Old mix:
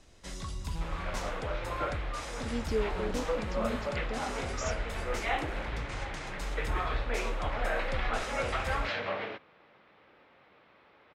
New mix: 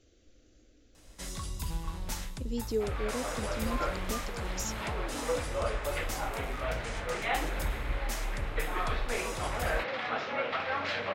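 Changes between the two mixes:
first sound: entry +0.95 s; second sound: entry +2.00 s; master: remove air absorption 59 m

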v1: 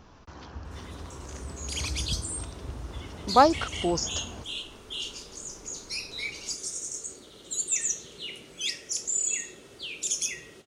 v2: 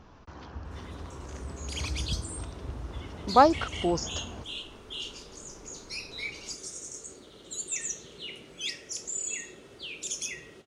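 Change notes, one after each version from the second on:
master: add high shelf 4600 Hz -8.5 dB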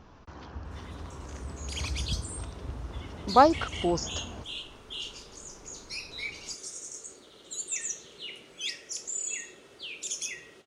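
background: add low shelf 320 Hz -9 dB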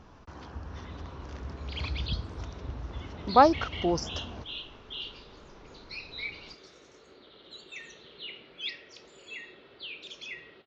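background: add elliptic low-pass 4200 Hz, stop band 80 dB

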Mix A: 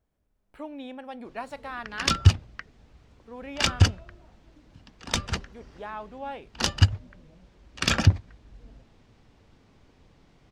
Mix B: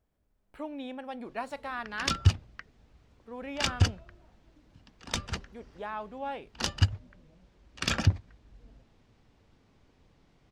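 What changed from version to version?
background -5.5 dB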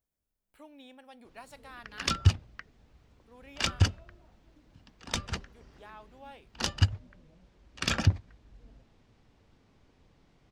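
speech: add pre-emphasis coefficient 0.8

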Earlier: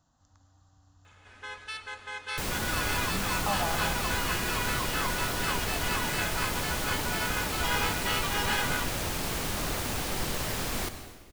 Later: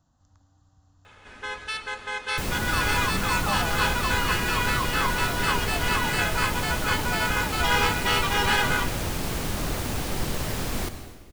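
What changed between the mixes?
speech: send off; first sound +6.5 dB; master: add low shelf 460 Hz +6 dB

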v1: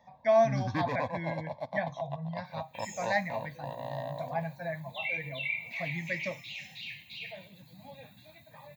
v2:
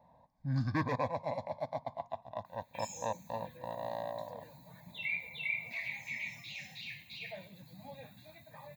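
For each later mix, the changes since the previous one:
speech: muted; master: add bell 3000 Hz -7.5 dB 0.42 oct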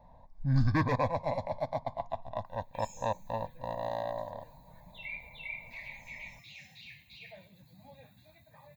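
first sound +4.0 dB; second sound -5.5 dB; master: remove HPF 120 Hz 12 dB/oct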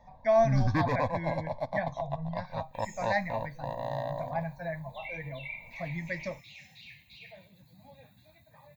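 speech: unmuted

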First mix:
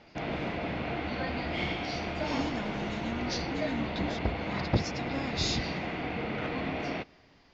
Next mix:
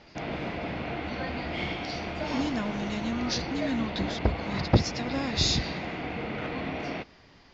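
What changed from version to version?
speech +6.0 dB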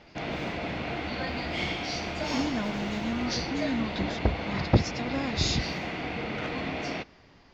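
background: remove LPF 1500 Hz 6 dB/oct; master: add bell 3900 Hz -4 dB 2.3 oct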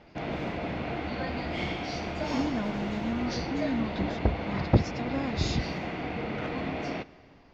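background: send +7.5 dB; master: add high shelf 2000 Hz -8.5 dB

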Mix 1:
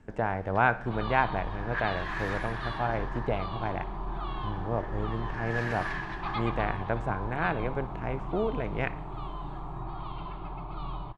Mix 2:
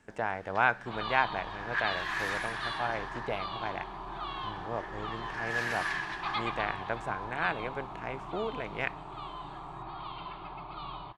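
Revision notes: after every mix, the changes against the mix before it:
speech: send -11.0 dB; master: add tilt +3 dB/oct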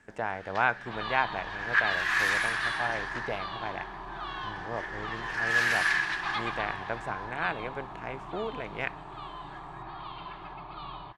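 first sound +8.0 dB

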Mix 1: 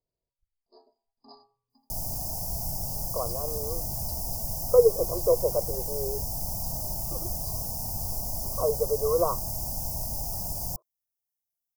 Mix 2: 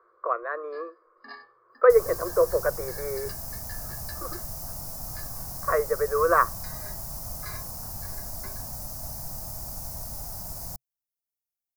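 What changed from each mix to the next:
speech: entry -2.90 s; second sound -4.5 dB; master: remove Chebyshev band-stop 890–4900 Hz, order 3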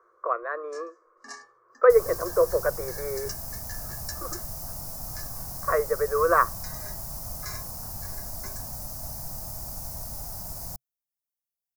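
first sound: remove brick-wall FIR low-pass 5100 Hz

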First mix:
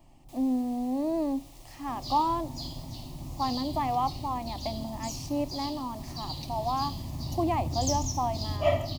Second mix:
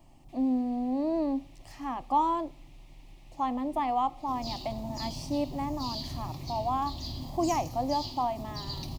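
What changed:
first sound: add band-pass 2300 Hz, Q 1.8; second sound: entry +2.40 s

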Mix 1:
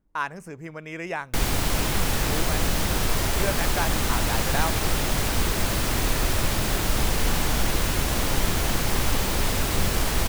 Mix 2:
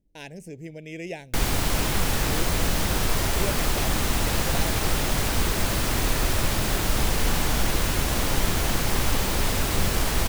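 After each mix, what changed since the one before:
speech: add Butterworth band-stop 1200 Hz, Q 0.69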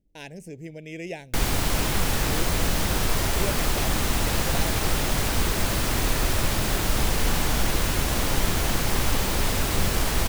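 none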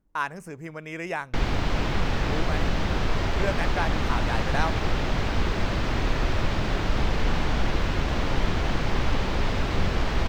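speech: remove Butterworth band-stop 1200 Hz, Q 0.69; background: add air absorption 200 m

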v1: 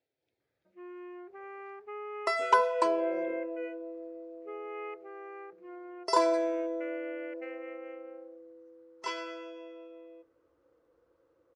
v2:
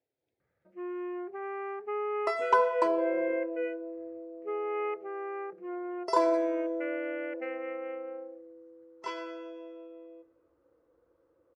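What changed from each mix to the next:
first sound +9.0 dB; second sound: send +7.0 dB; master: add high shelf 2200 Hz -9.5 dB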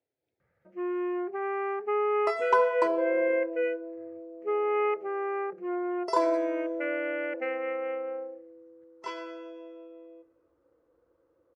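first sound +6.0 dB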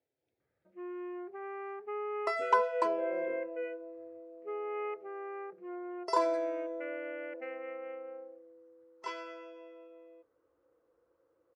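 first sound -10.5 dB; second sound: add low shelf 350 Hz -7 dB; reverb: off

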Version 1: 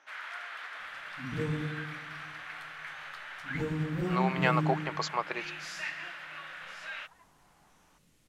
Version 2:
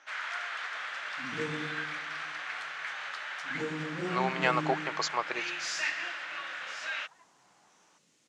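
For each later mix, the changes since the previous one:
first sound +4.5 dB; second sound: add HPF 250 Hz 12 dB/oct; master: add synth low-pass 6800 Hz, resonance Q 1.8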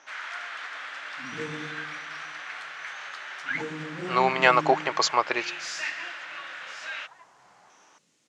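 speech +8.5 dB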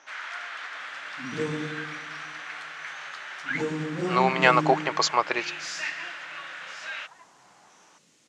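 second sound +6.5 dB

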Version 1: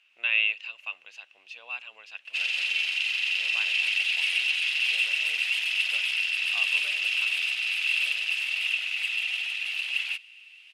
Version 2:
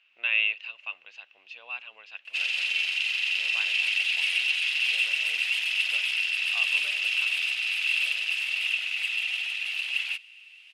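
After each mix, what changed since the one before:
speech: add LPF 4400 Hz 12 dB/oct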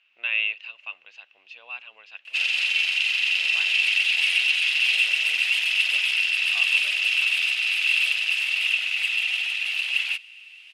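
background +4.5 dB

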